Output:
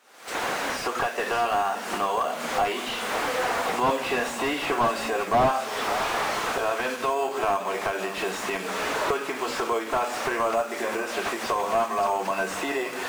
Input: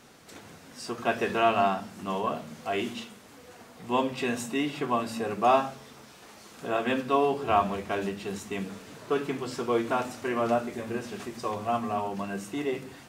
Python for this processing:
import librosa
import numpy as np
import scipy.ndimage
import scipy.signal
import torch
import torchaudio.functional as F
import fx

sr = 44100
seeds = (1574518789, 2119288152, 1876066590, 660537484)

p1 = fx.doppler_pass(x, sr, speed_mps=10, closest_m=7.8, pass_at_s=4.48)
p2 = fx.recorder_agc(p1, sr, target_db=-24.0, rise_db_per_s=71.0, max_gain_db=30)
p3 = fx.sample_hold(p2, sr, seeds[0], rate_hz=7400.0, jitter_pct=0)
p4 = p2 + (p3 * librosa.db_to_amplitude(-6.0))
p5 = scipy.signal.sosfilt(scipy.signal.butter(2, 620.0, 'highpass', fs=sr, output='sos'), p4)
p6 = p5 + fx.echo_single(p5, sr, ms=570, db=-15.5, dry=0)
p7 = fx.slew_limit(p6, sr, full_power_hz=38.0)
y = p7 * librosa.db_to_amplitude(8.5)